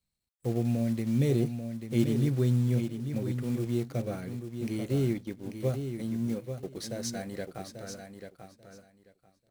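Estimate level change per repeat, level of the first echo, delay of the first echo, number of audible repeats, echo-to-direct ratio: -15.5 dB, -8.0 dB, 0.839 s, 2, -8.0 dB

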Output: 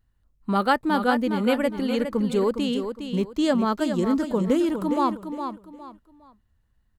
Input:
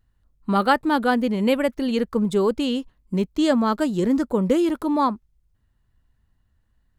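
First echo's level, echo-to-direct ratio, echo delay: -8.0 dB, -7.5 dB, 0.411 s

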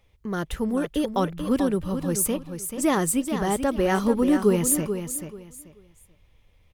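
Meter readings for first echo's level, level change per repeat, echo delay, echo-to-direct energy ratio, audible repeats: -8.5 dB, -13.0 dB, 0.435 s, -8.5 dB, 3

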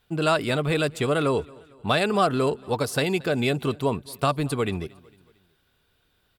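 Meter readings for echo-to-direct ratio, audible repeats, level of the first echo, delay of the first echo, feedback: -23.0 dB, 2, -24.0 dB, 0.227 s, 49%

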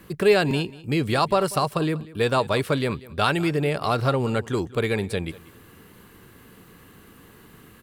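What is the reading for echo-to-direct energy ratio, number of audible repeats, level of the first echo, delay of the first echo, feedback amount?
-19.5 dB, 2, -19.5 dB, 0.191 s, 17%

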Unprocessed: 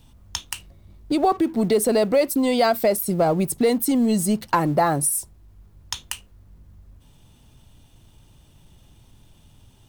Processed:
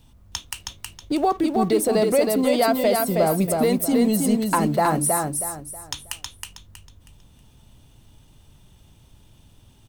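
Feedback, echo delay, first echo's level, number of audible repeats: 31%, 0.319 s, -3.5 dB, 4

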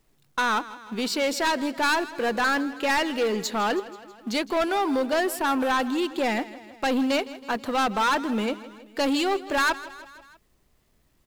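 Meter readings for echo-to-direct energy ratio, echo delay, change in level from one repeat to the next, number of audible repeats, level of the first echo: -15.0 dB, 0.161 s, -4.5 dB, 4, -17.0 dB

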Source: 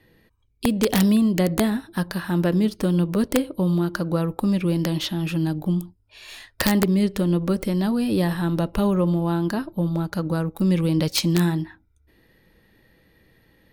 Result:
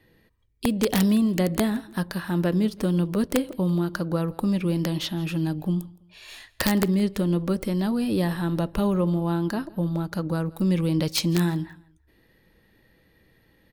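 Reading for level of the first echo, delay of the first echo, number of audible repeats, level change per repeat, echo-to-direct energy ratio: -23.0 dB, 0.166 s, 2, -9.5 dB, -22.5 dB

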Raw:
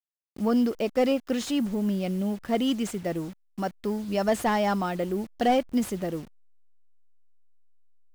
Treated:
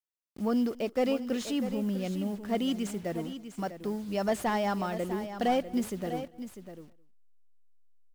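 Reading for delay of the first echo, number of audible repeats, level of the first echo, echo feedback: 0.212 s, 3, -23.0 dB, no steady repeat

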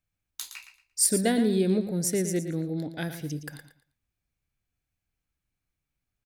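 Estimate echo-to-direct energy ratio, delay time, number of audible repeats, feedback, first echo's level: -9.5 dB, 0.115 s, 3, 24%, -10.0 dB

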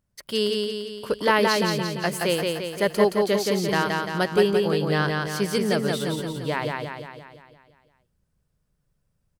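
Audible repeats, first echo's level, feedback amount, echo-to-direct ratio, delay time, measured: 7, -3.0 dB, 55%, -1.5 dB, 0.172 s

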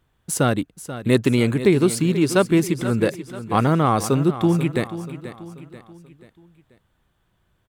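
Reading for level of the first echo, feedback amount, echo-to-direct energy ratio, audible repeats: -13.0 dB, 45%, -12.0 dB, 4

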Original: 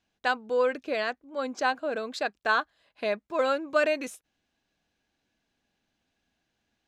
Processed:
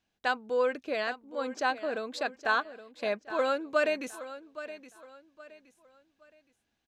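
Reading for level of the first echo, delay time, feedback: -14.0 dB, 0.819 s, 32%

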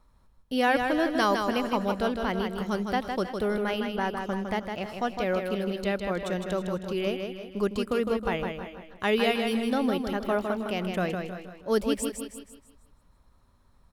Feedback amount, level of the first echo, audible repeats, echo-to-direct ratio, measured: no steady repeat, -5.5 dB, 4, -4.0 dB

